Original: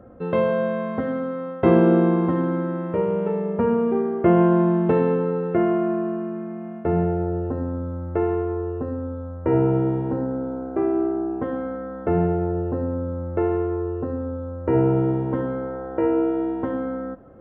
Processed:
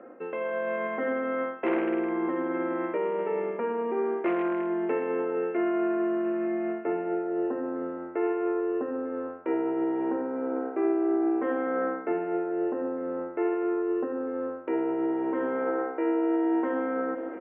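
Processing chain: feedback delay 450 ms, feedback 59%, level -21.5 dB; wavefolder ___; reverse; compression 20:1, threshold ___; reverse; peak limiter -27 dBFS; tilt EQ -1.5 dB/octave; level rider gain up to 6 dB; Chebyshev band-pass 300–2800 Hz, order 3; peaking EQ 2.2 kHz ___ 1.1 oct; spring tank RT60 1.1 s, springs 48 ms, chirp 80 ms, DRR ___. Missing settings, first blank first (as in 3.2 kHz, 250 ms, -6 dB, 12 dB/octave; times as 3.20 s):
-9.5 dBFS, -28 dBFS, +12 dB, 10.5 dB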